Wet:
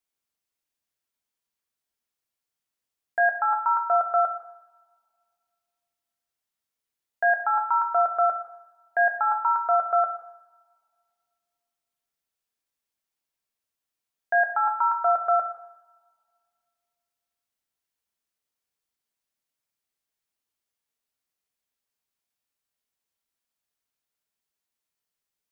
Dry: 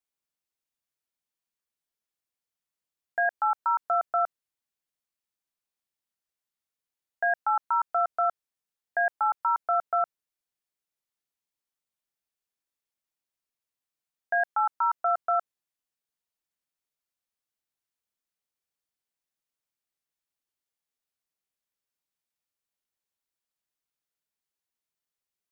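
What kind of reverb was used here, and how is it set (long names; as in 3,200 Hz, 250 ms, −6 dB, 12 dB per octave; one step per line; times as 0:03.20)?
coupled-rooms reverb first 0.76 s, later 2.3 s, from −25 dB, DRR 5 dB
level +2 dB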